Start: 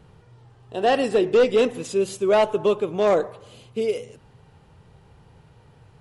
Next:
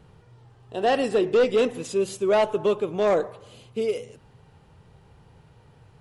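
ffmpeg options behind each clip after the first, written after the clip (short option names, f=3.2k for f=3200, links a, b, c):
-af "acontrast=67,volume=-8dB"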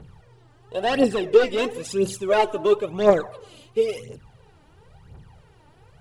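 -af "aphaser=in_gain=1:out_gain=1:delay=3.5:decay=0.68:speed=0.97:type=triangular"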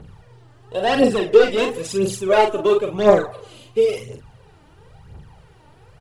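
-filter_complex "[0:a]asplit=2[a][b];[b]adelay=42,volume=-6dB[c];[a][c]amix=inputs=2:normalize=0,volume=3dB"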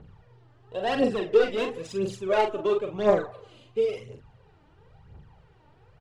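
-af "adynamicsmooth=sensitivity=1.5:basefreq=5.2k,volume=-8dB"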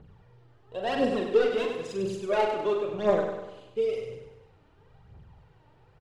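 -af "aecho=1:1:98|196|294|392|490|588:0.473|0.241|0.123|0.0628|0.032|0.0163,volume=-3dB"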